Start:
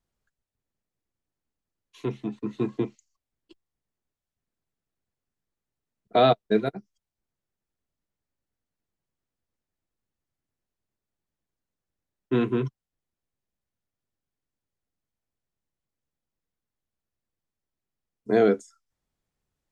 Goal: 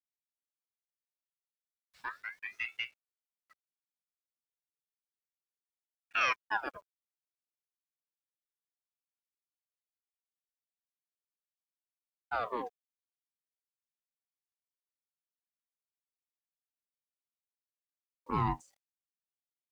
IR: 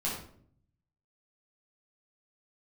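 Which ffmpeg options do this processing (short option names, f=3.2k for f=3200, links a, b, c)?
-filter_complex "[0:a]asettb=1/sr,asplit=3[a][b][c];[a]atrim=end=2.874[d];[b]atrim=start=2.87:end=6.21,asetpts=PTS-STARTPTS,afade=t=in:d=0.004:c=qsin,afade=t=out:st=3.336:d=0.004:c=qsin,lowpass=2.1k[e];[c]atrim=start=6.206[f];[d][e]acrossfade=d=0.004:c1=hsin:c2=qsin[g];[g][f]acrossfade=d=0.004:c1=qsin:c2=hsin,acrusher=bits=9:mix=0:aa=0.000001,aeval=exprs='val(0)*sin(2*PI*1500*n/s+1500*0.65/0.35*sin(2*PI*0.35*n/s))':c=same,volume=-8.5dB"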